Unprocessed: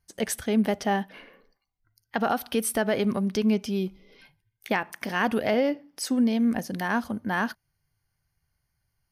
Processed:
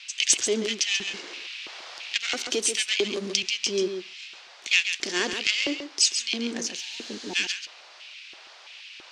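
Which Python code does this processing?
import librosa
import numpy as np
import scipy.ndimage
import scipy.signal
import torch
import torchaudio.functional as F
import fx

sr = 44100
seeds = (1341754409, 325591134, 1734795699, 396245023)

y = np.where(x < 0.0, 10.0 ** (-12.0 / 20.0) * x, x)
y = scipy.signal.sosfilt(scipy.signal.butter(2, 99.0, 'highpass', fs=sr, output='sos'), y)
y = fx.spec_repair(y, sr, seeds[0], start_s=6.77, length_s=0.56, low_hz=1000.0, high_hz=12000.0, source='before')
y = fx.curve_eq(y, sr, hz=(130.0, 250.0, 380.0, 780.0, 7200.0, 12000.0), db=(0, -10, -7, -17, 13, -24))
y = fx.dmg_noise_band(y, sr, seeds[1], low_hz=610.0, high_hz=5100.0, level_db=-58.0)
y = fx.filter_lfo_highpass(y, sr, shape='square', hz=1.5, low_hz=350.0, high_hz=2600.0, q=3.9)
y = y + 10.0 ** (-8.0 / 20.0) * np.pad(y, (int(136 * sr / 1000.0), 0))[:len(y)]
y = fx.band_squash(y, sr, depth_pct=40, at=(1.07, 3.43))
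y = F.gain(torch.from_numpy(y), 7.5).numpy()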